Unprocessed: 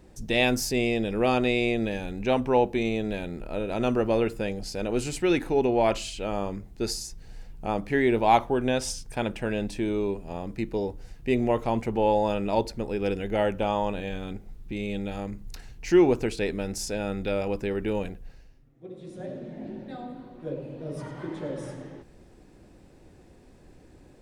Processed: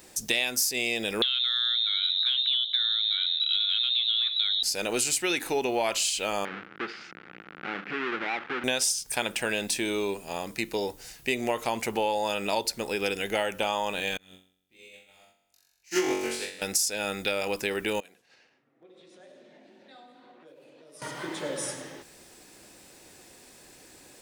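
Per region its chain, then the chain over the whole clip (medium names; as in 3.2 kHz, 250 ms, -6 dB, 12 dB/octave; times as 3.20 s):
1.22–4.63 s: frequency inversion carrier 3.9 kHz + compression 4:1, threshold -26 dBFS + high-pass 1.4 kHz
6.45–8.64 s: square wave that keeps the level + compression 3:1, threshold -36 dBFS + cabinet simulation 180–2500 Hz, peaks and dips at 180 Hz +5 dB, 320 Hz +4 dB, 640 Hz -8 dB, 990 Hz -7 dB, 1.4 kHz +8 dB
14.17–16.62 s: flutter echo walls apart 3.7 m, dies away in 1.2 s + upward expansion 2.5:1, over -35 dBFS
18.00–21.02 s: level-controlled noise filter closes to 1.4 kHz, open at -30.5 dBFS + compression 10:1, threshold -48 dBFS + high-pass 230 Hz
whole clip: tilt EQ +4.5 dB/octave; compression 8:1, threshold -28 dBFS; trim +5 dB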